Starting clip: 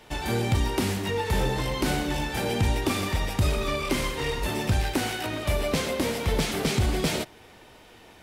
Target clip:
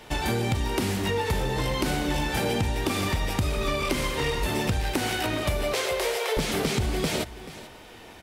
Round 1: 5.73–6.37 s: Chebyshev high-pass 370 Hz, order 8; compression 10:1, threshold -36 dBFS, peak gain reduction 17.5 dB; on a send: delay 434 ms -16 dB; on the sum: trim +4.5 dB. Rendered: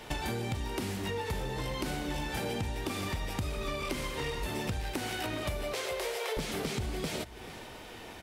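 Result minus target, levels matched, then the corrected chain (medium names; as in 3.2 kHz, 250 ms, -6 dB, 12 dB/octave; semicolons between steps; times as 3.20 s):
compression: peak gain reduction +8.5 dB
5.73–6.37 s: Chebyshev high-pass 370 Hz, order 8; compression 10:1, threshold -26.5 dBFS, peak gain reduction 9 dB; on a send: delay 434 ms -16 dB; on the sum: trim +4.5 dB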